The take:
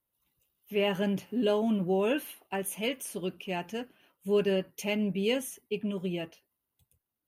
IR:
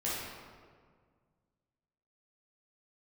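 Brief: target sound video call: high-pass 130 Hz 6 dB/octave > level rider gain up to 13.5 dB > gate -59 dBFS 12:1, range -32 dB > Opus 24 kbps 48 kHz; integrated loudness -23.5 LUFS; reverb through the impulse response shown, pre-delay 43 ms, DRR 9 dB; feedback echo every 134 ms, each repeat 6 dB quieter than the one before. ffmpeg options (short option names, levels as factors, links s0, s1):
-filter_complex "[0:a]aecho=1:1:134|268|402|536|670|804:0.501|0.251|0.125|0.0626|0.0313|0.0157,asplit=2[s0][s1];[1:a]atrim=start_sample=2205,adelay=43[s2];[s1][s2]afir=irnorm=-1:irlink=0,volume=0.178[s3];[s0][s3]amix=inputs=2:normalize=0,highpass=f=130:p=1,dynaudnorm=m=4.73,agate=range=0.0251:threshold=0.00112:ratio=12,volume=2" -ar 48000 -c:a libopus -b:a 24k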